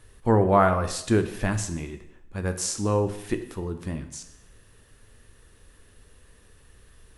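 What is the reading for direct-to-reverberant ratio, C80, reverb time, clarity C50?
8.0 dB, 13.5 dB, 0.80 s, 11.5 dB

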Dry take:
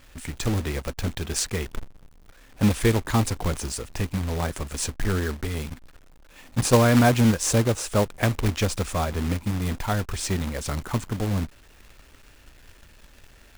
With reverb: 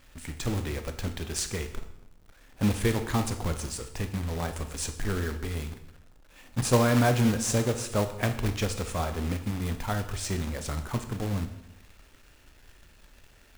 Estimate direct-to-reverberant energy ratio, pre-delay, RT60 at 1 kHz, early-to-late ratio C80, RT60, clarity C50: 7.5 dB, 18 ms, 0.75 s, 13.5 dB, 0.80 s, 10.5 dB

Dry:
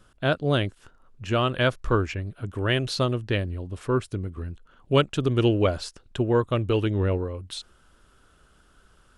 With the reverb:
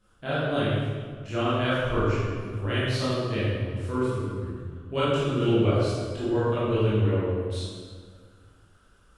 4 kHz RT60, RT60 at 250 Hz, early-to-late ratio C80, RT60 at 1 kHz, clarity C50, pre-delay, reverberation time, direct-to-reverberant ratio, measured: 1.3 s, 2.3 s, −0.5 dB, 1.6 s, −3.0 dB, 15 ms, 1.7 s, −11.5 dB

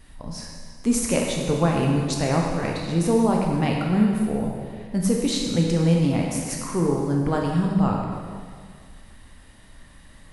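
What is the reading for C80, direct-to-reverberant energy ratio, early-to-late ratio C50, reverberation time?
3.0 dB, −1.0 dB, 1.5 dB, 1.9 s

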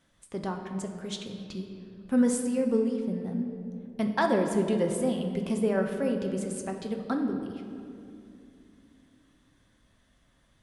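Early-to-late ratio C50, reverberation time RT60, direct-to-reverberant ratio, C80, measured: 5.5 dB, 2.6 s, 3.0 dB, 7.0 dB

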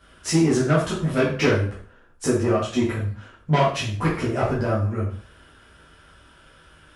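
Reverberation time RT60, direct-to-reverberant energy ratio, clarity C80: 0.45 s, −9.0 dB, 9.5 dB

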